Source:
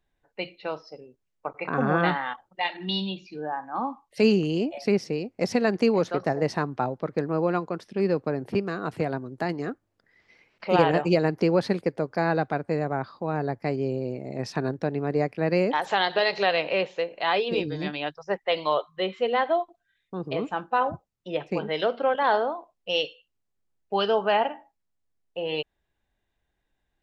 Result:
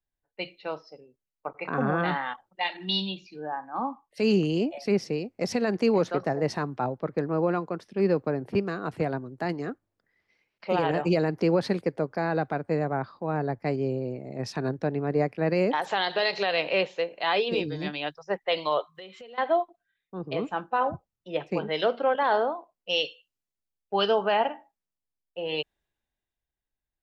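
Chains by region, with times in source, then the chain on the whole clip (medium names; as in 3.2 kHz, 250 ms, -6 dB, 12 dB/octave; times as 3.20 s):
18.95–19.38 s: treble shelf 3.1 kHz +9 dB + compression 12:1, threshold -36 dBFS
whole clip: peak limiter -15 dBFS; three bands expanded up and down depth 40%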